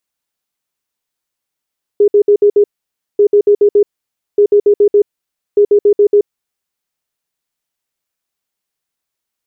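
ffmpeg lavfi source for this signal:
ffmpeg -f lavfi -i "aevalsrc='0.596*sin(2*PI*411*t)*clip(min(mod(mod(t,1.19),0.14),0.08-mod(mod(t,1.19),0.14))/0.005,0,1)*lt(mod(t,1.19),0.7)':duration=4.76:sample_rate=44100" out.wav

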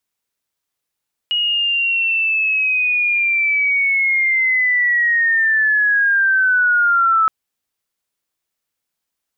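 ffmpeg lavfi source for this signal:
ffmpeg -f lavfi -i "aevalsrc='pow(10,(-15+4*t/5.97)/20)*sin(2*PI*(2900*t-1600*t*t/(2*5.97)))':duration=5.97:sample_rate=44100" out.wav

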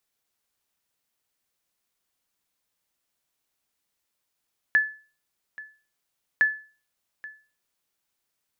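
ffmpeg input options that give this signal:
ffmpeg -f lavfi -i "aevalsrc='0.237*(sin(2*PI*1730*mod(t,1.66))*exp(-6.91*mod(t,1.66)/0.37)+0.1*sin(2*PI*1730*max(mod(t,1.66)-0.83,0))*exp(-6.91*max(mod(t,1.66)-0.83,0)/0.37))':duration=3.32:sample_rate=44100" out.wav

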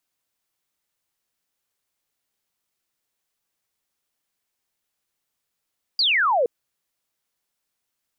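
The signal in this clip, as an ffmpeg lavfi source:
ffmpeg -f lavfi -i "aevalsrc='0.15*clip(t/0.002,0,1)*clip((0.47-t)/0.002,0,1)*sin(2*PI*4900*0.47/log(450/4900)*(exp(log(450/4900)*t/0.47)-1))':duration=0.47:sample_rate=44100" out.wav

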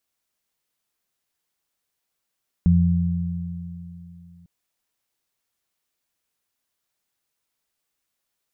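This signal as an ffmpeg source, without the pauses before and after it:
ffmpeg -f lavfi -i "aevalsrc='0.158*pow(10,-3*t/2.98)*sin(2*PI*86.5*t)+0.211*pow(10,-3*t/3.11)*sin(2*PI*173*t)':duration=1.8:sample_rate=44100" out.wav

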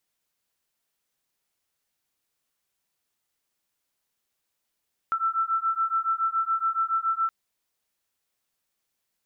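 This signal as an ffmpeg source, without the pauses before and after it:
ffmpeg -f lavfi -i "aevalsrc='0.0501*(sin(2*PI*1330*t)+sin(2*PI*1337.1*t))':duration=2.17:sample_rate=44100" out.wav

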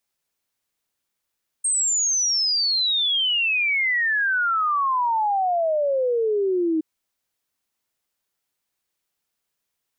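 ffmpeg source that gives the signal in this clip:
ffmpeg -f lavfi -i "aevalsrc='0.119*clip(min(t,5.17-t)/0.01,0,1)*sin(2*PI*8600*5.17/log(310/8600)*(exp(log(310/8600)*t/5.17)-1))':duration=5.17:sample_rate=44100" out.wav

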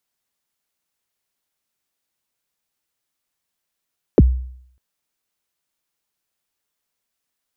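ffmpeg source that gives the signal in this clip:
ffmpeg -f lavfi -i "aevalsrc='0.631*pow(10,-3*t/0.65)*sin(2*PI*(540*0.034/log(63/540)*(exp(log(63/540)*min(t,0.034)/0.034)-1)+63*max(t-0.034,0)))':duration=0.6:sample_rate=44100" out.wav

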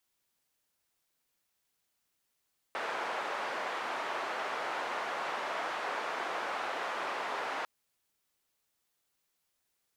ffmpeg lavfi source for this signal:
ffmpeg -f lavfi -i "anoisesrc=color=white:duration=4.9:sample_rate=44100:seed=1,highpass=frequency=600,lowpass=frequency=1200,volume=-16.3dB" out.wav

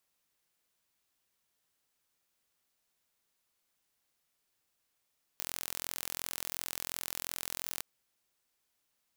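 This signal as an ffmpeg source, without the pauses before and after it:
ffmpeg -f lavfi -i "aevalsrc='0.316*eq(mod(n,1030),0)':duration=2.42:sample_rate=44100" out.wav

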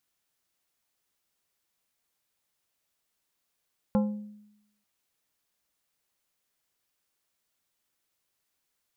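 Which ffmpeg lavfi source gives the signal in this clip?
ffmpeg -f lavfi -i "aevalsrc='0.106*pow(10,-3*t/0.86)*sin(2*PI*209*t)+0.0531*pow(10,-3*t/0.453)*sin(2*PI*522.5*t)+0.0266*pow(10,-3*t/0.326)*sin(2*PI*836*t)+0.0133*pow(10,-3*t/0.279)*sin(2*PI*1045*t)+0.00668*pow(10,-3*t/0.232)*sin(2*PI*1358.5*t)':duration=0.89:sample_rate=44100" out.wav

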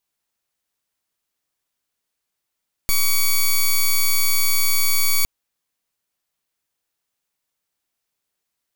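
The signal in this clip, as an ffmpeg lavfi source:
ffmpeg -f lavfi -i "aevalsrc='0.158*(2*lt(mod(2260*t,1),0.07)-1)':duration=2.36:sample_rate=44100" out.wav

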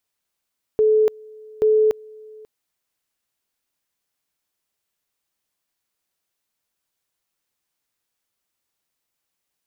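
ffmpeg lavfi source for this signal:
ffmpeg -f lavfi -i "aevalsrc='pow(10,(-12.5-26*gte(mod(t,0.83),0.29))/20)*sin(2*PI*432*t)':duration=1.66:sample_rate=44100" out.wav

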